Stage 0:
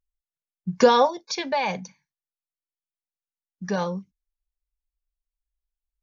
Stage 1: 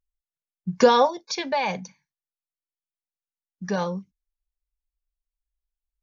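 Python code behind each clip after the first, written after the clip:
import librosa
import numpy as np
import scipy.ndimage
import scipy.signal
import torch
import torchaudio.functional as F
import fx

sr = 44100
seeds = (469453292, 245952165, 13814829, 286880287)

y = x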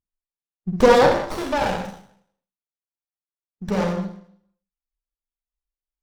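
y = fx.rev_schroeder(x, sr, rt60_s=0.63, comb_ms=31, drr_db=0.5)
y = fx.noise_reduce_blind(y, sr, reduce_db=13)
y = fx.running_max(y, sr, window=17)
y = F.gain(torch.from_numpy(y), 2.0).numpy()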